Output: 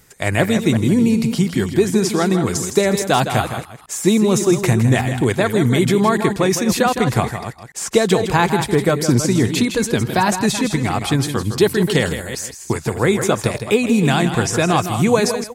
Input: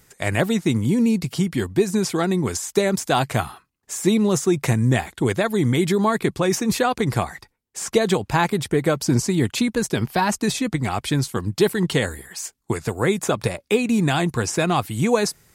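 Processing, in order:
delay that plays each chunk backwards 193 ms, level −10.5 dB
on a send: single-tap delay 160 ms −9.5 dB
on the sum: level +3.5 dB

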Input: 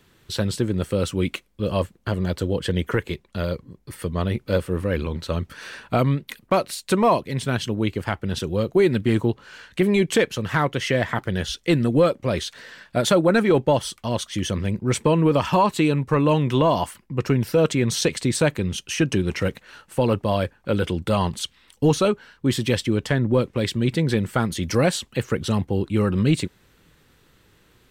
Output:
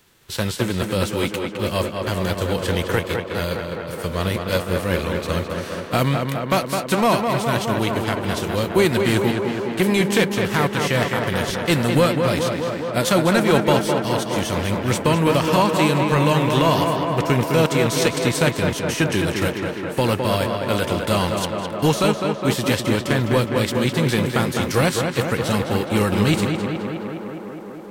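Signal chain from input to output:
spectral envelope flattened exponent 0.6
tape delay 208 ms, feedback 88%, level −3.5 dB, low-pass 2,800 Hz

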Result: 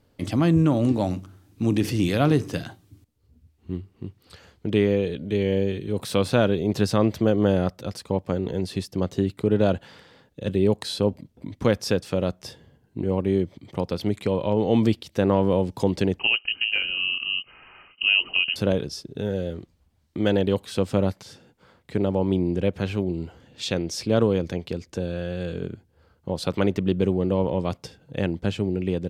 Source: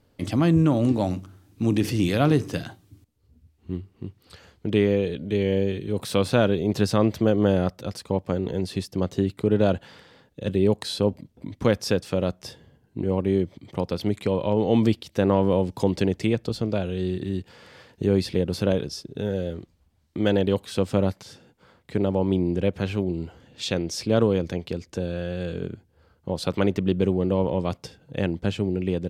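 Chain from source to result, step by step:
0:16.19–0:18.56: voice inversion scrambler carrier 3,000 Hz

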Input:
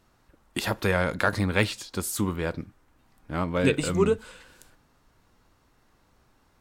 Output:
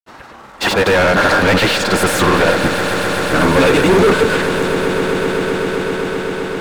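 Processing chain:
granular cloud 100 ms, grains 20 per second, pitch spread up and down by 0 semitones
mid-hump overdrive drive 36 dB, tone 1,800 Hz, clips at −9 dBFS
echo that builds up and dies away 129 ms, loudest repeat 8, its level −14 dB
level +5 dB

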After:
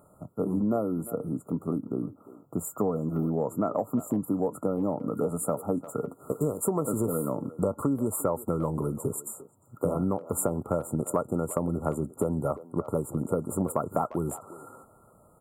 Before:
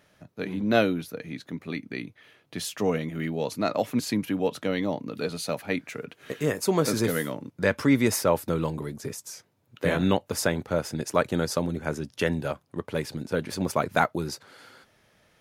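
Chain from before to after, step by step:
0:01.81–0:04.21: parametric band 9,700 Hz −10 dB 0.52 octaves
brick-wall band-stop 1,400–7,000 Hz
downward compressor 12 to 1, threshold −29 dBFS, peak gain reduction 14 dB
far-end echo of a speakerphone 350 ms, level −15 dB
level +6 dB

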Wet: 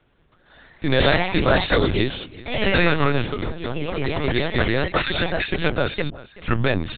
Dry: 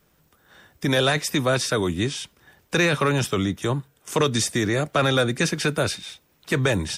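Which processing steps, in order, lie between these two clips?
0:01.56–0:02.02: high-shelf EQ 2,700 Hz +10 dB
0:03.25–0:04.28: downward compressor 6 to 1, threshold −26 dBFS, peak gain reduction 10 dB
0:04.98–0:05.51: inverse Chebyshev high-pass filter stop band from 600 Hz, stop band 50 dB
delay with pitch and tempo change per echo 178 ms, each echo +2 semitones, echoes 3
0:06.09: tape start 0.58 s
single-tap delay 380 ms −19.5 dB
linear-prediction vocoder at 8 kHz pitch kept
level +1.5 dB

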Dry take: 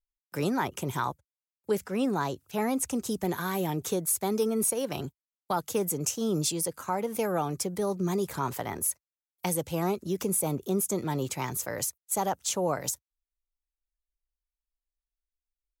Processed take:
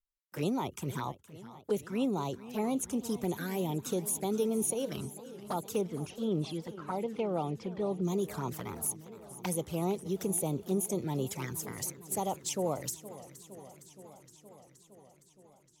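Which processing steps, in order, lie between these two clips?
0:05.81–0:08.05: low-pass filter 3,700 Hz 24 dB per octave
flanger swept by the level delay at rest 5.2 ms, full sweep at −25.5 dBFS
feedback echo with a swinging delay time 467 ms, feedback 73%, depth 173 cents, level −16.5 dB
level −2.5 dB

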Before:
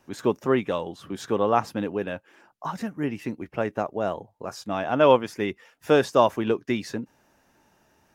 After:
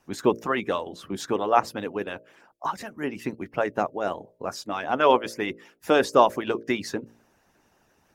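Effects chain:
hum removal 57.18 Hz, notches 11
harmonic and percussive parts rebalanced harmonic −17 dB
level +4 dB

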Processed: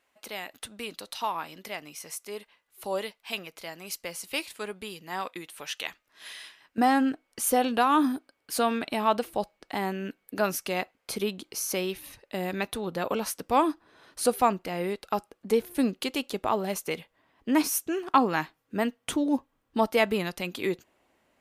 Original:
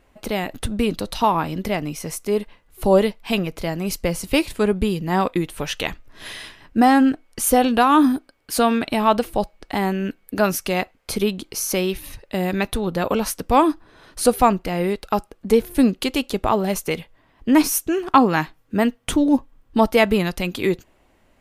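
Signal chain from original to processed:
high-pass filter 1,400 Hz 6 dB per octave, from 0:06.78 260 Hz
level −6.5 dB

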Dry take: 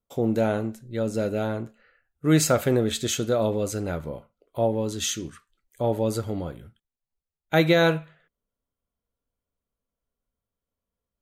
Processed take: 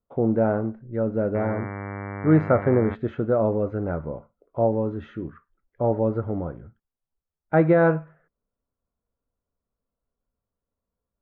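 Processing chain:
low-pass filter 1,500 Hz 24 dB per octave
0:01.34–0:02.94: hum with harmonics 100 Hz, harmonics 23, −35 dBFS −4 dB per octave
level +2 dB

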